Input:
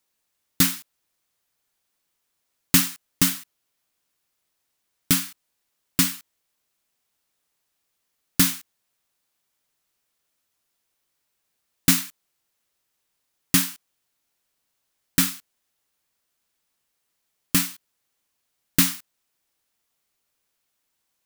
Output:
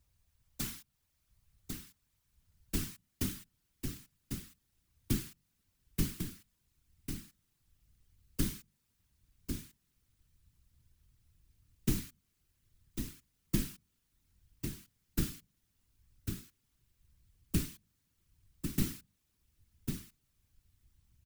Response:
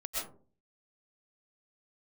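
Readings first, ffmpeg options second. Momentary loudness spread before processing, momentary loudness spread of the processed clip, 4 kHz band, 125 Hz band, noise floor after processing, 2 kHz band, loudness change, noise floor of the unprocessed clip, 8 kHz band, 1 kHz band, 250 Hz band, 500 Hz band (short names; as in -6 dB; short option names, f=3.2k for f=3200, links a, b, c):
16 LU, 16 LU, -18.5 dB, -6.0 dB, -79 dBFS, -19.5 dB, -18.0 dB, -77 dBFS, -18.5 dB, -19.0 dB, -10.5 dB, -4.0 dB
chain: -filter_complex "[0:a]aeval=exprs='(tanh(7.08*val(0)+0.4)-tanh(0.4))/7.08':c=same,bandreject=f=50:t=h:w=6,bandreject=f=100:t=h:w=6,bandreject=f=150:t=h:w=6,acompressor=threshold=-37dB:ratio=3,asplit=2[a][b];[b]aecho=0:1:1098:0.447[c];[a][c]amix=inputs=2:normalize=0,asubboost=boost=8.5:cutoff=200,afftfilt=real='hypot(re,im)*cos(2*PI*random(0))':imag='hypot(re,im)*sin(2*PI*random(1))':win_size=512:overlap=0.75,acrossover=split=100[d][e];[d]acompressor=mode=upward:threshold=-52dB:ratio=2.5[f];[f][e]amix=inputs=2:normalize=0,volume=3dB"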